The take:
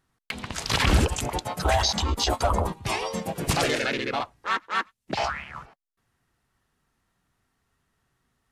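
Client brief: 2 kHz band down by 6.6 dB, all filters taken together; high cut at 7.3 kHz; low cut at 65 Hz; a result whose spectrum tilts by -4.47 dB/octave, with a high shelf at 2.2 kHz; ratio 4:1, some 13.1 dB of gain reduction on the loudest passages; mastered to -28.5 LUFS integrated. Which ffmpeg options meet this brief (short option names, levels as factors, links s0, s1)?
-af "highpass=65,lowpass=7300,equalizer=f=2000:t=o:g=-6.5,highshelf=f=2200:g=-3.5,acompressor=threshold=0.02:ratio=4,volume=2.82"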